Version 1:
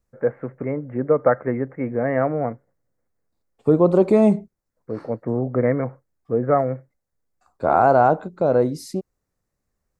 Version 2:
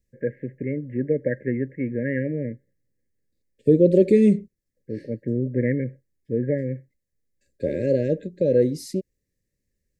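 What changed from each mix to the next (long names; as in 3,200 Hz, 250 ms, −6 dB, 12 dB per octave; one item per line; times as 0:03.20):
first voice: add parametric band 520 Hz −7 dB 0.55 octaves
master: add linear-phase brick-wall band-stop 600–1,600 Hz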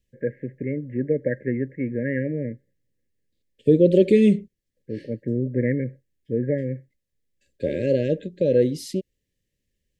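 second voice: add parametric band 3,100 Hz +14.5 dB 0.52 octaves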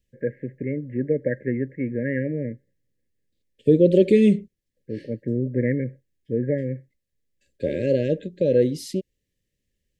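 nothing changed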